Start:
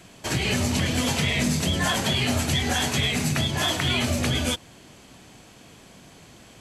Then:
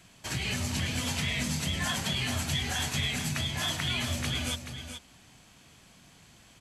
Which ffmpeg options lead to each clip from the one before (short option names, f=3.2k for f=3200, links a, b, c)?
-af "equalizer=f=420:w=0.75:g=-8,aecho=1:1:428:0.355,volume=-6dB"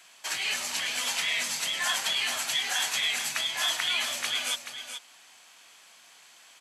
-af "highpass=810,volume=4.5dB"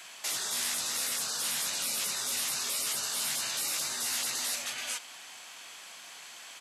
-filter_complex "[0:a]afftfilt=real='re*lt(hypot(re,im),0.0282)':imag='im*lt(hypot(re,im),0.0282)':win_size=1024:overlap=0.75,acrossover=split=1500[a][b];[a]alimiter=level_in=23.5dB:limit=-24dB:level=0:latency=1,volume=-23.5dB[c];[c][b]amix=inputs=2:normalize=0,volume=7dB"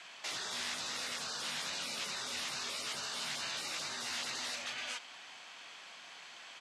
-af "lowpass=4.5k,volume=-2dB"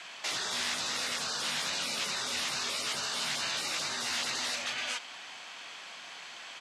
-af "volume=29dB,asoftclip=hard,volume=-29dB,volume=6dB"